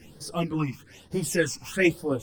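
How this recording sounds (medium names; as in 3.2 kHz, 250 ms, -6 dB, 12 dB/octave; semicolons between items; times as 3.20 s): phasing stages 8, 1.1 Hz, lowest notch 470–2500 Hz; tremolo saw down 3.8 Hz, depth 40%; a shimmering, thickened sound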